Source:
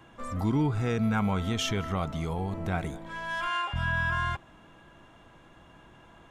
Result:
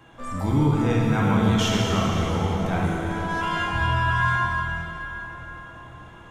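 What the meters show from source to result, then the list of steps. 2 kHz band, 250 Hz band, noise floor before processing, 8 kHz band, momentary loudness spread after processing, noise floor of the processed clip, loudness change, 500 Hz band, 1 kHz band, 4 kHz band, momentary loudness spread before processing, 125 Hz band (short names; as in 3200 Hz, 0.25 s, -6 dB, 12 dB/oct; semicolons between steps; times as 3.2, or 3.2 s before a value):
+6.5 dB, +7.0 dB, -55 dBFS, +6.5 dB, 16 LU, -45 dBFS, +6.5 dB, +7.5 dB, +8.0 dB, +6.5 dB, 7 LU, +8.0 dB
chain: plate-style reverb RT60 4.3 s, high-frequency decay 0.7×, DRR -4.5 dB; gain +1.5 dB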